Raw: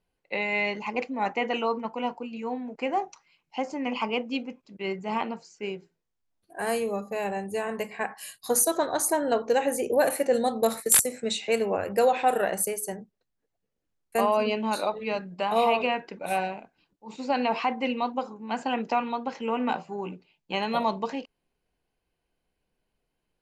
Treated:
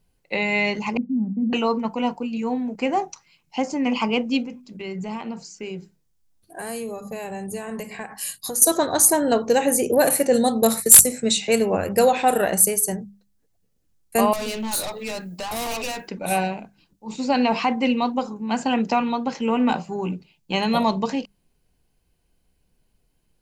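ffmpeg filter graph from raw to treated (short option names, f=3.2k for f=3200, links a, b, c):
-filter_complex "[0:a]asettb=1/sr,asplit=3[a][b][c];[a]atrim=end=0.974[d];[b]atrim=start=0.97:end=1.53,asetpts=PTS-STARTPTS,afade=t=in:d=0.004:c=qsin,afade=t=out:st=0.556:d=0.004:c=qsin,asuperpass=centerf=210:order=4:qfactor=2.7,acontrast=36[e];[c]atrim=start=1.526[f];[d][e]acrossfade=d=0.004:c1=hsin:c2=qsin[g];[g][f]acrossfade=d=0.004:c1=qsin:c2=hsin,asettb=1/sr,asplit=3[h][i][j];[h]atrim=end=4.444[k];[i]atrim=start=4.44:end=8.62,asetpts=PTS-STARTPTS,afade=t=in:d=0.004:c=qsin,afade=t=out:st=4.176:d=0.004:c=qsin,acompressor=threshold=-35dB:ratio=4:attack=3.2:release=140:knee=1:detection=peak,bandreject=f=50:t=h:w=6,bandreject=f=100:t=h:w=6,bandreject=f=150:t=h:w=6,bandreject=f=200:t=h:w=6,bandreject=f=250:t=h:w=6,bandreject=f=300:t=h:w=6[l];[j]atrim=start=8.616[m];[k][l]acrossfade=d=0.004:c1=hsin:c2=qsin[n];[n][m]acrossfade=d=0.004:c1=qsin:c2=hsin,asettb=1/sr,asplit=3[o][p][q];[o]atrim=end=14.334[r];[p]atrim=start=14.33:end=16.08,asetpts=PTS-STARTPTS,afade=t=in:d=0.004:c=qsin,afade=t=out:st=1.746:d=0.004:c=qsin,aemphasis=mode=production:type=bsi,aeval=exprs='(tanh(39.8*val(0)+0.1)-tanh(0.1))/39.8':c=same[s];[q]atrim=start=16.076[t];[r][s]acrossfade=d=0.004:c1=hsin:c2=qsin[u];[u][t]acrossfade=d=0.004:c1=qsin:c2=hsin,bass=f=250:g=11,treble=f=4k:g=9,bandreject=f=50:t=h:w=6,bandreject=f=100:t=h:w=6,bandreject=f=150:t=h:w=6,bandreject=f=200:t=h:w=6,acontrast=26,volume=-1dB"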